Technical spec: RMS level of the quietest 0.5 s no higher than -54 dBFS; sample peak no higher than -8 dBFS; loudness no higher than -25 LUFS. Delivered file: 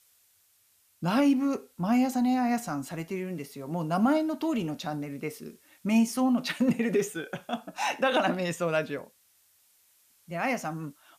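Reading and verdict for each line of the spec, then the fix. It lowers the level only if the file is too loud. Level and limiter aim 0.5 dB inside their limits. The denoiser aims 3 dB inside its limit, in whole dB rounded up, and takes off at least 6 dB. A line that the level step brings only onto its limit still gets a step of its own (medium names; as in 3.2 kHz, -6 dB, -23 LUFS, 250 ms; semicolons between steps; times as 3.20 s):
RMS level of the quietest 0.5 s -66 dBFS: pass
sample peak -13.5 dBFS: pass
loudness -28.5 LUFS: pass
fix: none needed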